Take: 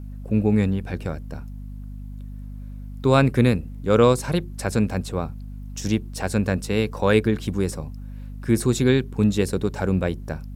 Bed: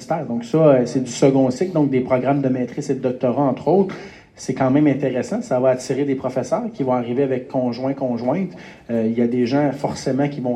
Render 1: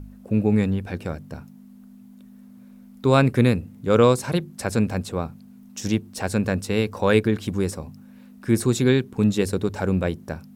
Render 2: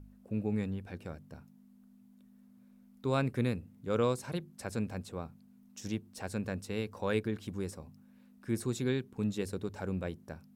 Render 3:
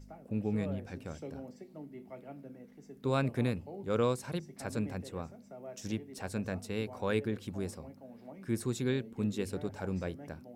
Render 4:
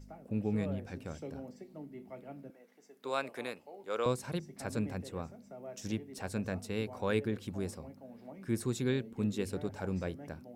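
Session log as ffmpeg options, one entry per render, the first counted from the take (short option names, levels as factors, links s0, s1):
-af "bandreject=f=50:t=h:w=4,bandreject=f=100:t=h:w=4,bandreject=f=150:t=h:w=4"
-af "volume=0.211"
-filter_complex "[1:a]volume=0.0316[s0];[0:a][s0]amix=inputs=2:normalize=0"
-filter_complex "[0:a]asettb=1/sr,asplit=3[s0][s1][s2];[s0]atrim=end=2.504[s3];[s1]atrim=start=2.5:end=4.06,asetpts=PTS-STARTPTS,afade=t=in:d=0.004:c=qsin,afade=t=out:st=1.556:d=0.004:c=qsin,highpass=540[s4];[s2]atrim=start=4.056[s5];[s3][s4]acrossfade=d=0.004:c1=hsin:c2=qsin[s6];[s6][s5]acrossfade=d=0.004:c1=qsin:c2=hsin"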